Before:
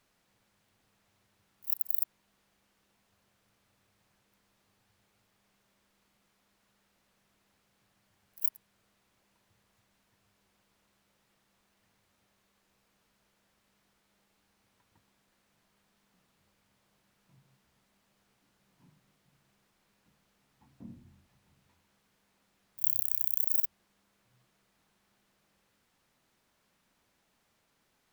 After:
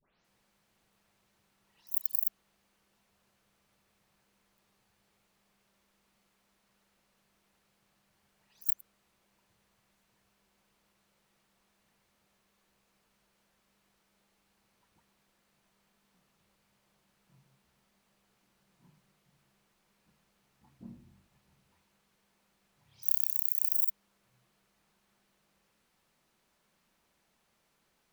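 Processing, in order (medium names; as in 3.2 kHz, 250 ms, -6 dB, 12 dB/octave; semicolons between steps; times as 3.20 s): delay that grows with frequency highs late, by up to 243 ms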